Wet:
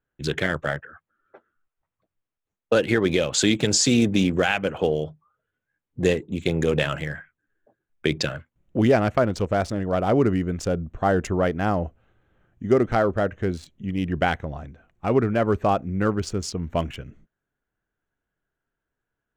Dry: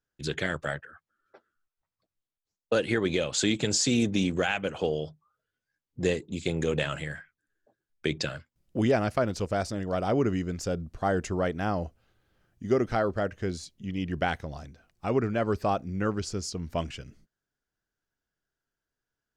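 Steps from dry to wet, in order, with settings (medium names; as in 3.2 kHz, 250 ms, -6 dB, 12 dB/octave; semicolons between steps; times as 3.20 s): local Wiener filter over 9 samples; trim +6 dB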